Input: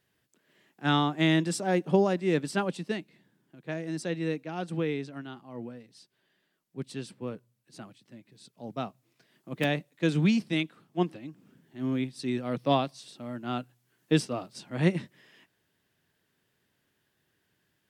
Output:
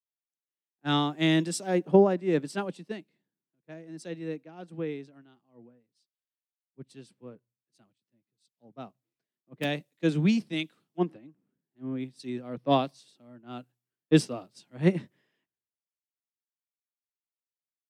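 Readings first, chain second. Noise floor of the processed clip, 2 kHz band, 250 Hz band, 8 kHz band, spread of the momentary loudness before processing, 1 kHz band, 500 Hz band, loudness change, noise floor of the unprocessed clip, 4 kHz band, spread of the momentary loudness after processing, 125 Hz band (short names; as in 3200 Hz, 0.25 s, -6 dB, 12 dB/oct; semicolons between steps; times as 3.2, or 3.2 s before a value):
under -85 dBFS, -3.0 dB, 0.0 dB, 0.0 dB, 19 LU, -1.0 dB, +1.5 dB, +1.5 dB, -76 dBFS, -0.5 dB, 20 LU, -1.0 dB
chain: bell 370 Hz +4.5 dB 2.5 oct; three-band expander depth 100%; gain -7.5 dB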